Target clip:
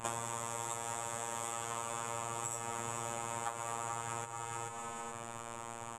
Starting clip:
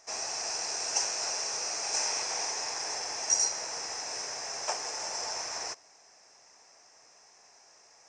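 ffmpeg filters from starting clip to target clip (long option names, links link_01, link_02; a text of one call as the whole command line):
ffmpeg -i in.wav -filter_complex "[0:a]afftfilt=real='hypot(re,im)*cos(PI*b)':imag='0':win_size=2048:overlap=0.75,asplit=2[link_01][link_02];[link_02]alimiter=limit=-17.5dB:level=0:latency=1:release=297,volume=0.5dB[link_03];[link_01][link_03]amix=inputs=2:normalize=0,tiltshelf=frequency=1100:gain=9,asplit=2[link_04][link_05];[link_05]aecho=0:1:589|1178|1767:0.251|0.0653|0.017[link_06];[link_04][link_06]amix=inputs=2:normalize=0,asetrate=59535,aresample=44100,bass=frequency=250:gain=14,treble=frequency=4000:gain=1,bandreject=frequency=60:width_type=h:width=6,bandreject=frequency=120:width_type=h:width=6,bandreject=frequency=180:width_type=h:width=6,bandreject=frequency=240:width_type=h:width=6,bandreject=frequency=300:width_type=h:width=6,anlmdn=0.000158,acompressor=threshold=-48dB:ratio=8,volume=12.5dB" out.wav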